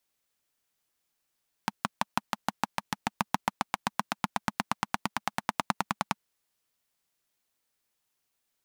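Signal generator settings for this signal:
pulse-train model of a single-cylinder engine, changing speed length 4.47 s, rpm 700, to 1,200, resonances 210/890 Hz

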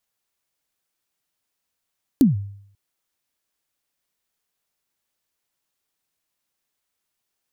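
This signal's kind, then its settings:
synth kick length 0.54 s, from 300 Hz, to 100 Hz, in 146 ms, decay 0.66 s, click on, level −8 dB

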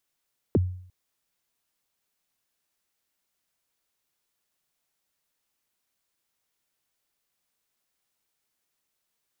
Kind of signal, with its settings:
synth kick length 0.35 s, from 500 Hz, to 91 Hz, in 28 ms, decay 0.58 s, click off, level −15 dB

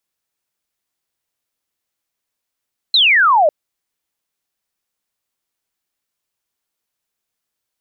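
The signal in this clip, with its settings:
single falling chirp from 4,200 Hz, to 570 Hz, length 0.55 s sine, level −8.5 dB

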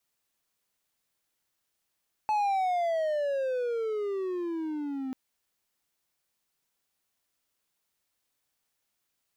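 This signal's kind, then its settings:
pitch glide with a swell triangle, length 2.84 s, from 866 Hz, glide −21 semitones, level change −8 dB, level −21.5 dB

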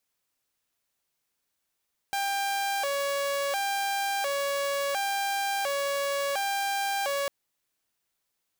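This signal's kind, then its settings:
siren hi-lo 561–794 Hz 0.71 per second saw −24 dBFS 5.15 s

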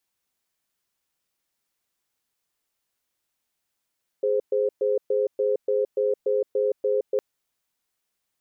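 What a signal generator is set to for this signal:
tone pair in a cadence 416 Hz, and 521 Hz, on 0.17 s, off 0.12 s, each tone −22.5 dBFS 2.96 s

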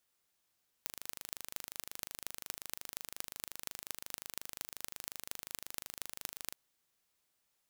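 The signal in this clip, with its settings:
impulse train 25.6 per second, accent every 6, −10 dBFS 5.67 s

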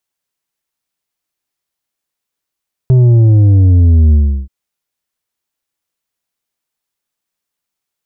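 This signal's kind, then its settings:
bass drop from 130 Hz, over 1.58 s, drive 6.5 dB, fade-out 0.35 s, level −5 dB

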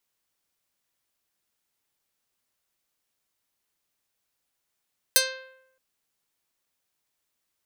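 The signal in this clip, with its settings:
Karplus-Strong string C5, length 0.62 s, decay 0.82 s, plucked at 0.46, medium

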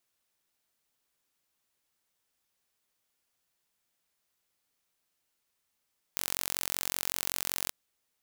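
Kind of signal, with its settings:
impulse train 45.3 per second, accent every 0, −4.5 dBFS 1.54 s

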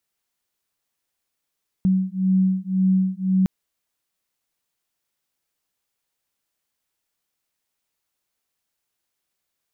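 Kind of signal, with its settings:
two tones that beat 187 Hz, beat 1.9 Hz, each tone −20 dBFS 1.61 s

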